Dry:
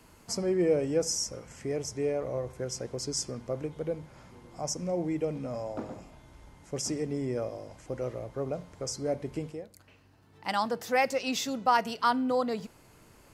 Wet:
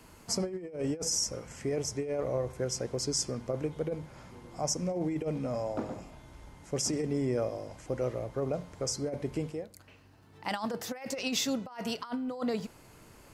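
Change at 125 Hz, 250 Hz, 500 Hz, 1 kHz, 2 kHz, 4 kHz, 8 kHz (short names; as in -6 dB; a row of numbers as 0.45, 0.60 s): +1.0, -1.0, -2.5, -10.0, -6.5, +1.0, +1.5 dB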